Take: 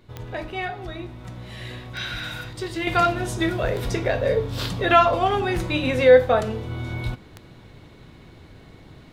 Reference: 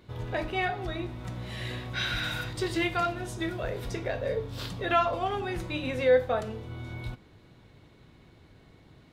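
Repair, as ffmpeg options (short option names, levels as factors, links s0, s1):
-af "adeclick=t=4,agate=range=0.0891:threshold=0.0126,asetnsamples=n=441:p=0,asendcmd='2.87 volume volume -9dB',volume=1"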